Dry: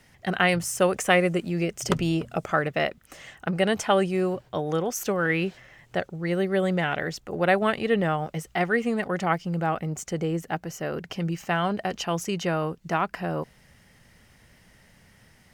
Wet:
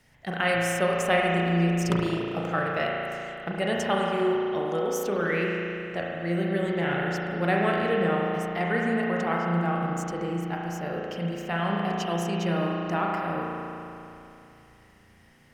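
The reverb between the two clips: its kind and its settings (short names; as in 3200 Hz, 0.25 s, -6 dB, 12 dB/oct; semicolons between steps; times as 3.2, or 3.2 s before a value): spring tank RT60 2.9 s, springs 35 ms, chirp 75 ms, DRR -3 dB; gain -5.5 dB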